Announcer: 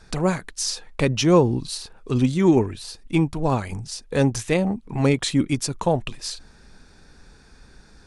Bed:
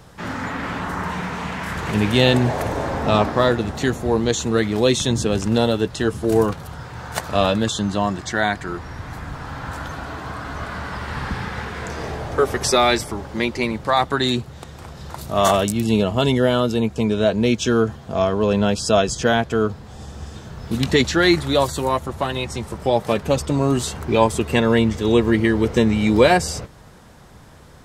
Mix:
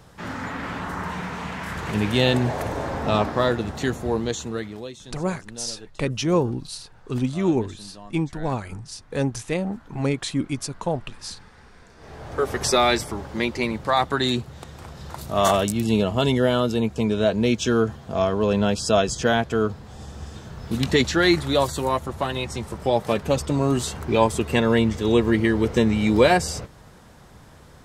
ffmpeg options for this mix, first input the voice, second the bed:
ffmpeg -i stem1.wav -i stem2.wav -filter_complex "[0:a]adelay=5000,volume=-4.5dB[link_01];[1:a]volume=16dB,afade=type=out:start_time=4.04:duration=0.88:silence=0.11885,afade=type=in:start_time=11.98:duration=0.65:silence=0.1[link_02];[link_01][link_02]amix=inputs=2:normalize=0" out.wav

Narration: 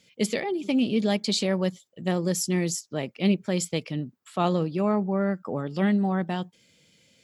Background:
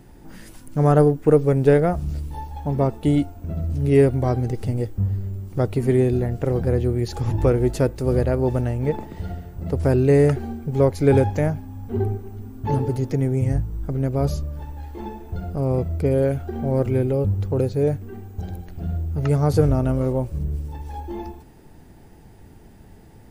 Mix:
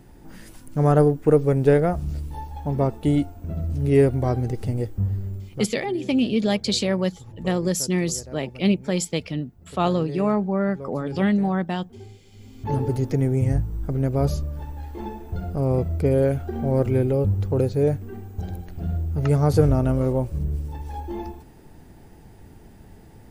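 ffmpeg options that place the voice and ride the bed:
ffmpeg -i stem1.wav -i stem2.wav -filter_complex "[0:a]adelay=5400,volume=2.5dB[link_01];[1:a]volume=18dB,afade=type=out:start_time=5.34:duration=0.35:silence=0.125893,afade=type=in:start_time=12.26:duration=0.67:silence=0.105925[link_02];[link_01][link_02]amix=inputs=2:normalize=0" out.wav

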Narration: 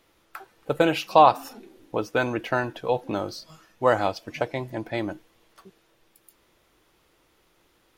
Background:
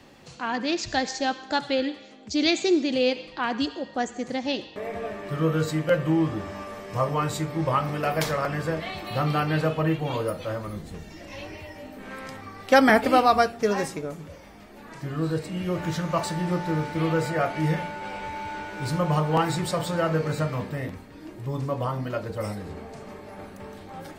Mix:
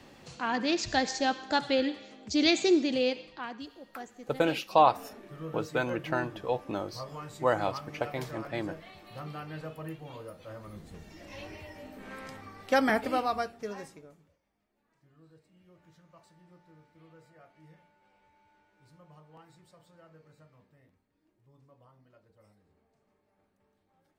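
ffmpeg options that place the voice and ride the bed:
ffmpeg -i stem1.wav -i stem2.wav -filter_complex "[0:a]adelay=3600,volume=-6dB[link_01];[1:a]volume=9dB,afade=type=out:start_time=2.71:duration=0.89:silence=0.188365,afade=type=in:start_time=10.37:duration=1.02:silence=0.281838,afade=type=out:start_time=12.19:duration=2.2:silence=0.0446684[link_02];[link_01][link_02]amix=inputs=2:normalize=0" out.wav

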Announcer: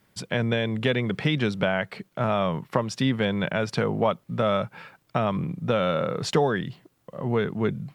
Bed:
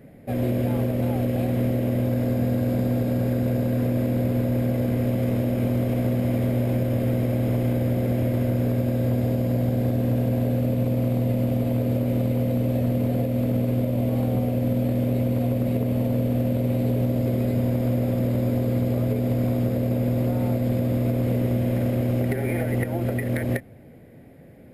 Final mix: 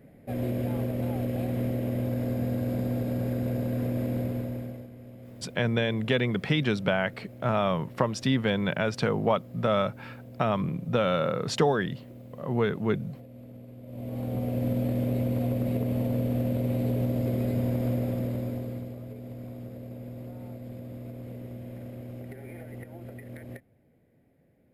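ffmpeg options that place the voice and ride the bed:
ffmpeg -i stem1.wav -i stem2.wav -filter_complex "[0:a]adelay=5250,volume=-1.5dB[link_01];[1:a]volume=12.5dB,afade=type=out:start_time=4.16:duration=0.73:silence=0.141254,afade=type=in:start_time=13.82:duration=0.8:silence=0.11885,afade=type=out:start_time=17.9:duration=1.07:silence=0.223872[link_02];[link_01][link_02]amix=inputs=2:normalize=0" out.wav

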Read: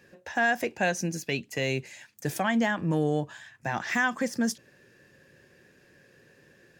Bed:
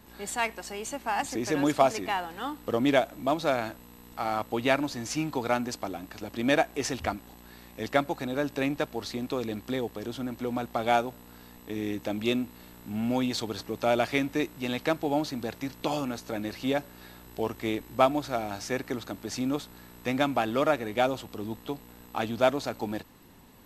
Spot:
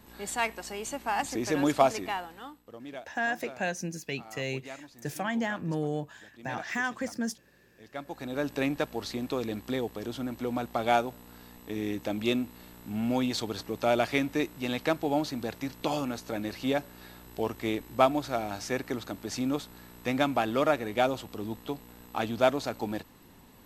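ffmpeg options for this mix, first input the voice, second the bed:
ffmpeg -i stem1.wav -i stem2.wav -filter_complex "[0:a]adelay=2800,volume=-5dB[link_01];[1:a]volume=18dB,afade=type=out:start_time=1.89:duration=0.75:silence=0.11885,afade=type=in:start_time=7.92:duration=0.59:silence=0.11885[link_02];[link_01][link_02]amix=inputs=2:normalize=0" out.wav

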